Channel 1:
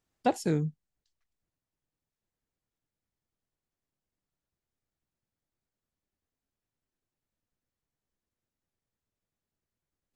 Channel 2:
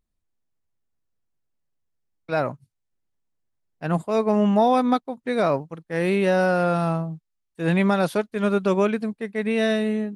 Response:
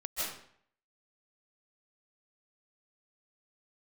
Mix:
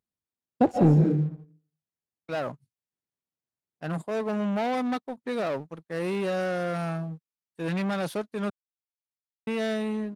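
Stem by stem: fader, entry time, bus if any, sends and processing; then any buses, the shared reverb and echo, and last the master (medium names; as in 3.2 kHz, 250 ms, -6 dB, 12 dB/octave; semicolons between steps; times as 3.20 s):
-5.5 dB, 0.35 s, send -4 dB, expander -38 dBFS; tilt EQ -4.5 dB/octave
-6.0 dB, 0.00 s, muted 8.50–9.47 s, no send, saturation -22.5 dBFS, distortion -8 dB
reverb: on, RT60 0.60 s, pre-delay 115 ms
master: high-pass 110 Hz 12 dB/octave; waveshaping leveller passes 1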